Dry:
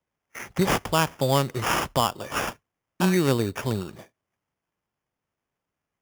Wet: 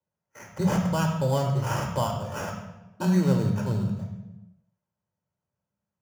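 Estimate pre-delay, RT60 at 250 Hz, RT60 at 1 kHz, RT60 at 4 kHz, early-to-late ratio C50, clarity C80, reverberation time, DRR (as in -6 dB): 3 ms, 1.6 s, 1.0 s, 0.75 s, 5.0 dB, 7.0 dB, 1.1 s, 0.5 dB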